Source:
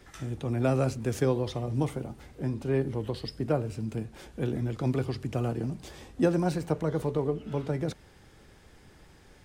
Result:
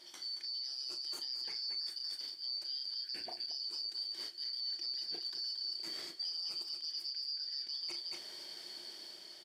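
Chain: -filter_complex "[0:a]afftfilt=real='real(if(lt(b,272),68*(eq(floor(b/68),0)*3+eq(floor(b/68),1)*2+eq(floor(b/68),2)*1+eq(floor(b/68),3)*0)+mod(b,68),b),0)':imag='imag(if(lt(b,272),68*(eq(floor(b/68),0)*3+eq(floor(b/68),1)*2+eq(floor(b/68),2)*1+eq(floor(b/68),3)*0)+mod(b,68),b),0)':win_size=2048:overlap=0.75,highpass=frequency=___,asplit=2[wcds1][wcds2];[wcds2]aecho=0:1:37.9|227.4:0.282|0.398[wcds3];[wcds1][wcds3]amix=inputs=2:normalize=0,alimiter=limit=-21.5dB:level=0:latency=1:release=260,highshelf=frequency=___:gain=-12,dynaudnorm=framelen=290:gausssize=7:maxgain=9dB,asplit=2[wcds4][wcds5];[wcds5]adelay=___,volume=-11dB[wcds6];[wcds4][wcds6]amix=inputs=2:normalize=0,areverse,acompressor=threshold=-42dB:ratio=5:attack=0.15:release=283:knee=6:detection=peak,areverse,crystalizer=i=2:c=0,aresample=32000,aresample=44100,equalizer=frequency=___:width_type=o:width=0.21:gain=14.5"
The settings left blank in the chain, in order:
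170, 3.3k, 31, 350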